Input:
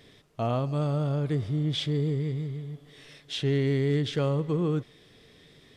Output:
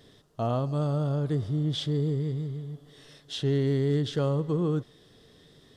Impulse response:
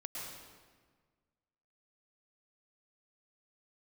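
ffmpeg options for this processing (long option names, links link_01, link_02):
-af "equalizer=frequency=2300:width_type=o:width=0.46:gain=-12"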